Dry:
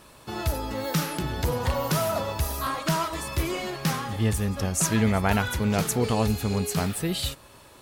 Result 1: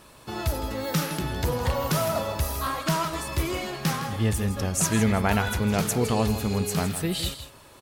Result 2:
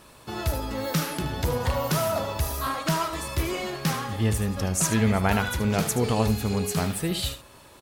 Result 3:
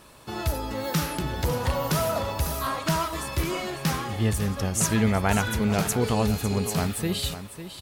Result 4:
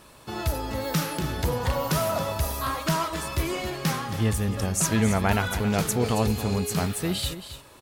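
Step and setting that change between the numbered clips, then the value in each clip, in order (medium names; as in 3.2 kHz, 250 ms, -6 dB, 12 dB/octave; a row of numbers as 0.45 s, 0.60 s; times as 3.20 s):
delay, time: 161 ms, 75 ms, 551 ms, 273 ms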